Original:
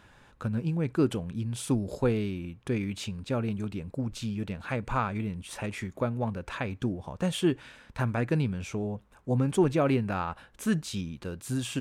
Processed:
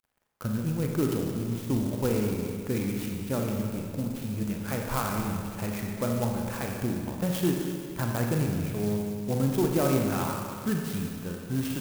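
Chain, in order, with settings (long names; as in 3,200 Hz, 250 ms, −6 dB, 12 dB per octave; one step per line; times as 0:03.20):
low-pass that shuts in the quiet parts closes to 2,800 Hz, open at −22.5 dBFS
in parallel at +3 dB: brickwall limiter −20.5 dBFS, peak gain reduction 7.5 dB
on the sum: dead-zone distortion −42.5 dBFS
four-comb reverb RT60 2.2 s, combs from 30 ms, DRR 0.5 dB
converter with an unsteady clock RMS 0.067 ms
level −7.5 dB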